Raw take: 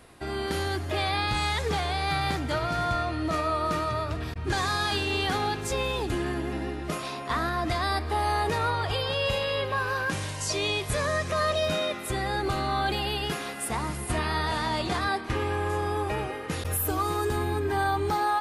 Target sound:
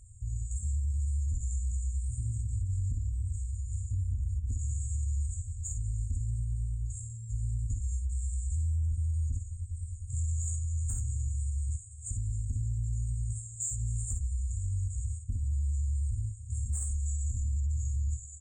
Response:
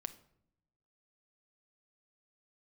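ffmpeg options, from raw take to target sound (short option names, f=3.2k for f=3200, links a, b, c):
-filter_complex "[0:a]afftfilt=real='re*(1-between(b*sr/4096,140,8200))':imag='im*(1-between(b*sr/4096,140,8200))':win_size=4096:overlap=0.75,aresample=22050,aresample=44100,acontrast=85,asetrate=36028,aresample=44100,atempo=1.22405,asoftclip=type=tanh:threshold=-16.5dB,acrossover=split=580[a][b];[a]aeval=exprs='val(0)*(1-0.5/2+0.5/2*cos(2*PI*9.7*n/s))':c=same[c];[b]aeval=exprs='val(0)*(1-0.5/2-0.5/2*cos(2*PI*9.7*n/s))':c=same[d];[c][d]amix=inputs=2:normalize=0,asplit=2[e][f];[f]aecho=0:1:24|53|64:0.335|0.531|0.376[g];[e][g]amix=inputs=2:normalize=0,alimiter=level_in=1dB:limit=-24dB:level=0:latency=1:release=89,volume=-1dB"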